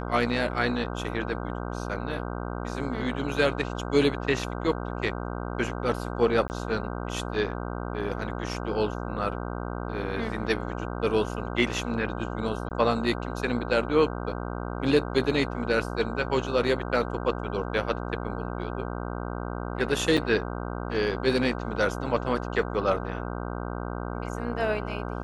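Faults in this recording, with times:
buzz 60 Hz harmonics 26 -33 dBFS
6.48–6.5 gap 19 ms
12.69–12.71 gap 19 ms
20.17–20.18 gap 6.4 ms

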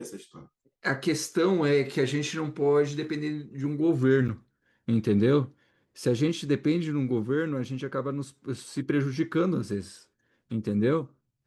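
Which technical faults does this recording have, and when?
4.28–4.29 gap 6.6 ms

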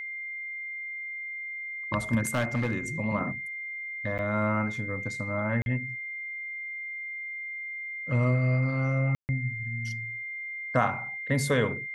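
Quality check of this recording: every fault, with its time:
tone 2100 Hz -34 dBFS
2.27–2.77 clipped -22 dBFS
4.18–4.19 gap 8.9 ms
5.62–5.66 gap 41 ms
9.15–9.29 gap 0.139 s

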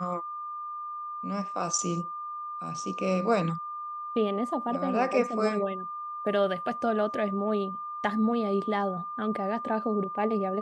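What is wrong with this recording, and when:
tone 1200 Hz -34 dBFS

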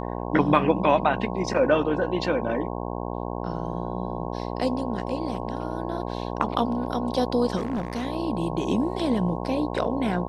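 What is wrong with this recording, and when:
buzz 60 Hz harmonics 18 -31 dBFS
7.56–8.07 clipped -23.5 dBFS

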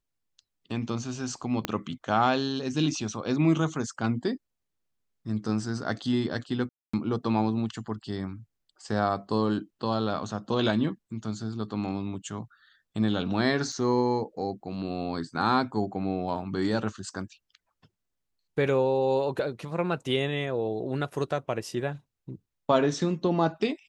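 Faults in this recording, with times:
1.65 pop -12 dBFS
6.69–6.93 gap 0.245 s
13.72 gap 4.6 ms

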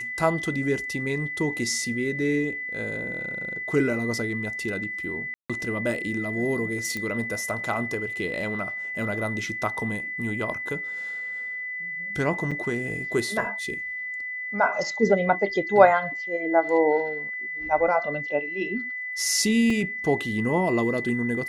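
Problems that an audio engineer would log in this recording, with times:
tone 2000 Hz -30 dBFS
5.34–5.5 gap 0.156 s
6.97 pop -17 dBFS
12.51–12.52 gap 5.4 ms
19.7 gap 3.3 ms

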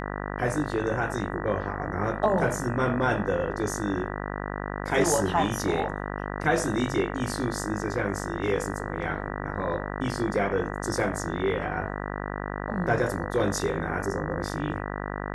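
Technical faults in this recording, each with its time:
buzz 50 Hz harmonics 39 -33 dBFS

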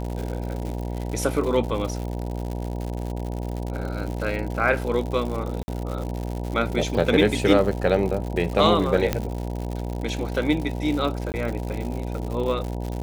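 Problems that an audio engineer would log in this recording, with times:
buzz 60 Hz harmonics 16 -29 dBFS
crackle 140/s -29 dBFS
5.63–5.68 gap 50 ms
9.13 pop -8 dBFS
11.32–11.34 gap 19 ms

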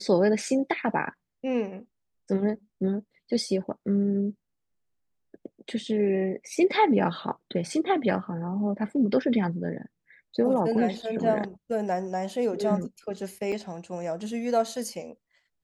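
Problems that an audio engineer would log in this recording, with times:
13.52 gap 4.2 ms

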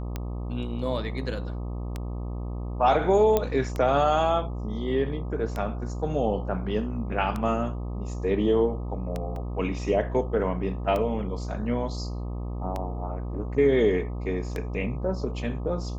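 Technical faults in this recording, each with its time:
buzz 60 Hz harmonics 21 -32 dBFS
tick 33 1/3 rpm -17 dBFS
3.37 pop -10 dBFS
9.36 gap 2.2 ms

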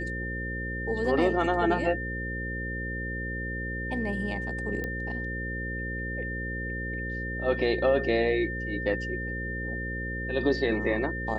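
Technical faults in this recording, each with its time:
buzz 60 Hz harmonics 9 -35 dBFS
tone 1800 Hz -34 dBFS
4.84 pop -20 dBFS

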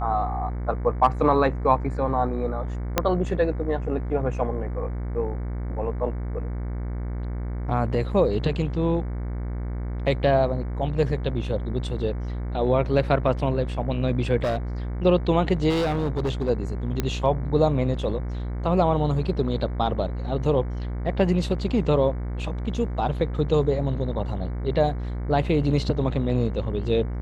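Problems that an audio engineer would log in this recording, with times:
buzz 60 Hz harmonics 38 -29 dBFS
2.98 pop -4 dBFS
14.43–14.57 clipped -20.5 dBFS
15.69–16.5 clipped -20.5 dBFS
17 pop -10 dBFS

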